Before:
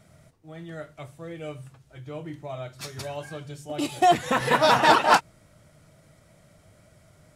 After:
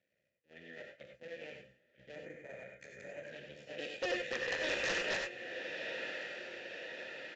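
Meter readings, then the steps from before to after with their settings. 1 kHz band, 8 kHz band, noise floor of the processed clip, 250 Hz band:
-27.5 dB, -13.0 dB, -82 dBFS, -17.5 dB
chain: cycle switcher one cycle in 2, muted; high-pass 73 Hz 12 dB/octave; on a send: echo that smears into a reverb 1083 ms, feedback 52%, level -10 dB; on the sum: gate -44 dBFS, range -14 dB; peaking EQ 620 Hz -14 dB 2.5 oct; in parallel at -1 dB: compression, threshold -44 dBFS, peak gain reduction 20.5 dB; on the sum: vowel filter e; wavefolder -36 dBFS; time-frequency box 2.15–3.24 s, 2.5–6 kHz -13 dB; gated-style reverb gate 120 ms rising, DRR 3 dB; resampled via 16 kHz; trim +7 dB

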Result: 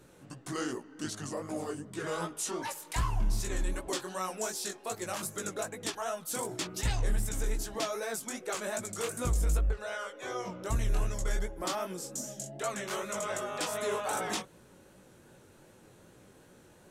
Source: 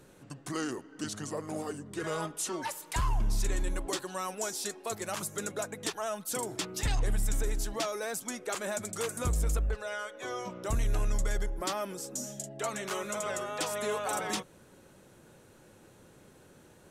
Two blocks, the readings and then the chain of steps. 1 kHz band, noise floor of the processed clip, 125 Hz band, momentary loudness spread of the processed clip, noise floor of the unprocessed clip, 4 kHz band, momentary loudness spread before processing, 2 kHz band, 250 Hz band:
-0.5 dB, -58 dBFS, 0.0 dB, 6 LU, -58 dBFS, -0.5 dB, 6 LU, -0.5 dB, -0.5 dB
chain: chorus 2.6 Hz, delay 16 ms, depth 7.2 ms; endings held to a fixed fall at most 310 dB/s; trim +2.5 dB

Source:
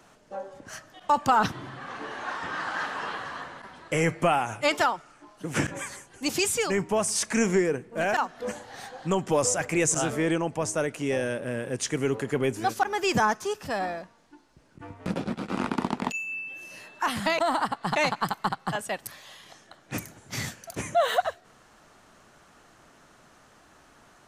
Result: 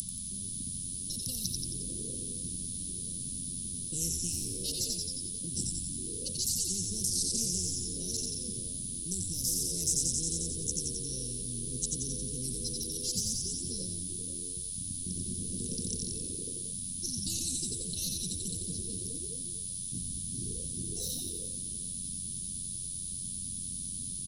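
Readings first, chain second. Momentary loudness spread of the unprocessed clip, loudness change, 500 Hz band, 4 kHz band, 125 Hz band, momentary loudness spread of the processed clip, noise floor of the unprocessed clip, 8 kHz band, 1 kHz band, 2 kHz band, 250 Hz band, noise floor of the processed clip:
15 LU, -5.5 dB, -20.0 dB, -1.5 dB, -4.0 dB, 6 LU, -57 dBFS, +4.0 dB, under -40 dB, under -30 dB, -10.0 dB, -39 dBFS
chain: local Wiener filter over 41 samples; level-controlled noise filter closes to 2 kHz, open at -20.5 dBFS; rippled EQ curve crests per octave 2, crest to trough 9 dB; phase shifter stages 8, 0.6 Hz, lowest notch 280–2500 Hz; peaking EQ 780 Hz +4.5 dB; whistle 10 kHz -35 dBFS; Chebyshev band-stop 210–5600 Hz, order 4; frequency-shifting echo 89 ms, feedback 52%, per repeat -90 Hz, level -5 dB; band noise 3.4–9 kHz -71 dBFS; spectrum-flattening compressor 4:1

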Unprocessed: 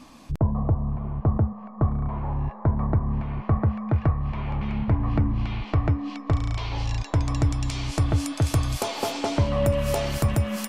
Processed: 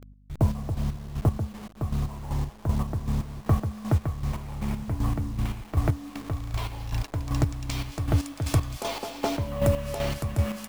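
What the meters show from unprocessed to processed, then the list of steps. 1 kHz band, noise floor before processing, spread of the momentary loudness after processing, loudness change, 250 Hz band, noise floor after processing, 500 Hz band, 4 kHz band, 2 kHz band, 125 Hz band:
-4.0 dB, -41 dBFS, 6 LU, -3.5 dB, -3.5 dB, -48 dBFS, -3.5 dB, -3.5 dB, -3.5 dB, -3.5 dB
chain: send-on-delta sampling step -36 dBFS; hum 50 Hz, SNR 24 dB; square tremolo 2.6 Hz, depth 60%, duty 35%

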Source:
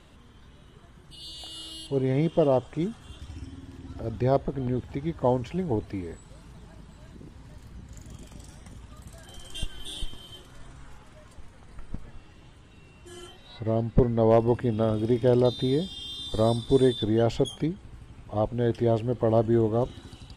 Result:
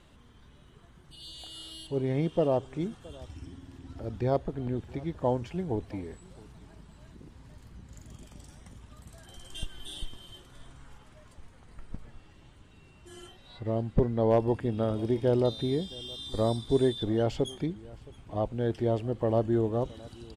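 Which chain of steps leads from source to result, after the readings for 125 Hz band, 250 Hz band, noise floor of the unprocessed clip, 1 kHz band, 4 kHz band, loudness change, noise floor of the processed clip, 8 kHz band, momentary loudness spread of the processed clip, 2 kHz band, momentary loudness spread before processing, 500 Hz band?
-4.0 dB, -4.0 dB, -52 dBFS, -4.0 dB, -4.0 dB, -4.0 dB, -56 dBFS, -4.0 dB, 22 LU, -4.0 dB, 22 LU, -4.0 dB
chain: delay 668 ms -22.5 dB; trim -4 dB

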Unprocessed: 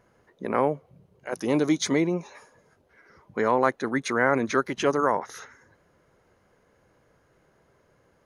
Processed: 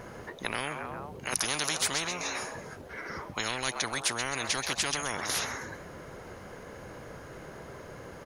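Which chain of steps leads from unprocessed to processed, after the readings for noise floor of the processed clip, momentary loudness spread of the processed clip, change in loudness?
-46 dBFS, 17 LU, -6.0 dB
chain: frequency-shifting echo 130 ms, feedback 37%, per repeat +98 Hz, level -20 dB; spectrum-flattening compressor 10:1

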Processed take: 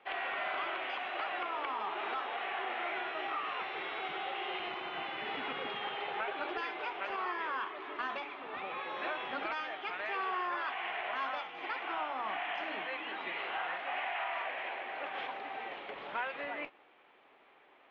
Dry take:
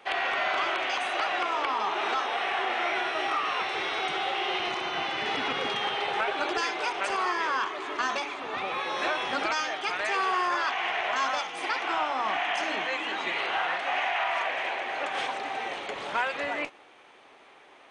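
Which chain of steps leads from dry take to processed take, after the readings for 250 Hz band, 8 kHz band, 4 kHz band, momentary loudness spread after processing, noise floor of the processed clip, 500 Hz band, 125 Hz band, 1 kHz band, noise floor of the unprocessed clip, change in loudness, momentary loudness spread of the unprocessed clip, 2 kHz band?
-8.5 dB, under -30 dB, -11.0 dB, 4 LU, -63 dBFS, -8.5 dB, under -10 dB, -8.5 dB, -54 dBFS, -9.0 dB, 4 LU, -8.5 dB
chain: low-pass 3.3 kHz 24 dB/octave; peaking EQ 100 Hz -8 dB 0.53 oct; trim -8.5 dB

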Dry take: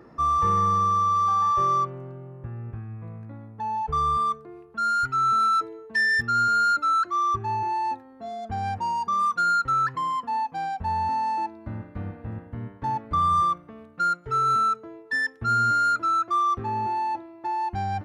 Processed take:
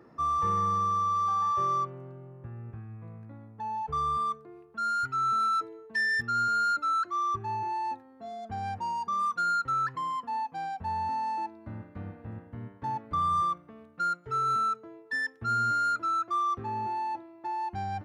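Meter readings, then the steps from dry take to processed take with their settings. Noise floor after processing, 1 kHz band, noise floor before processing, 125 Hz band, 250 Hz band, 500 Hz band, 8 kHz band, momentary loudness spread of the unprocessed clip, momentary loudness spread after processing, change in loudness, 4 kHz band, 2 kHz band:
-55 dBFS, -5.5 dB, -49 dBFS, -6.5 dB, -5.5 dB, -5.5 dB, -5.5 dB, 16 LU, 16 LU, -5.5 dB, -5.5 dB, -5.5 dB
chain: high-pass 76 Hz; trim -5.5 dB

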